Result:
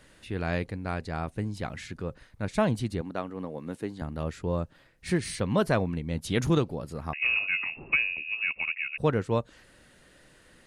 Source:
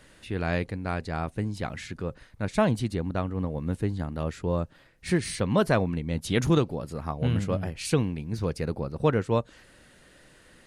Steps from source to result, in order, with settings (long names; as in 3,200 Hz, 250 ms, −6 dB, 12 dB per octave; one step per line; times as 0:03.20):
0:03.01–0:04.02: high-pass filter 240 Hz 12 dB per octave
0:07.13–0:08.98: voice inversion scrambler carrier 2,700 Hz
level −2 dB